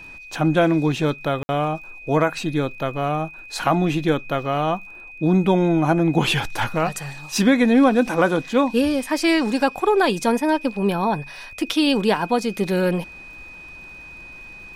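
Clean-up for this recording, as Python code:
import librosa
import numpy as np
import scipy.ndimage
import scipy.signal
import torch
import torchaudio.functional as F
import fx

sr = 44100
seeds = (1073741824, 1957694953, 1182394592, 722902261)

y = fx.fix_declick_ar(x, sr, threshold=6.5)
y = fx.notch(y, sr, hz=2500.0, q=30.0)
y = fx.fix_ambience(y, sr, seeds[0], print_start_s=13.54, print_end_s=14.04, start_s=1.43, end_s=1.49)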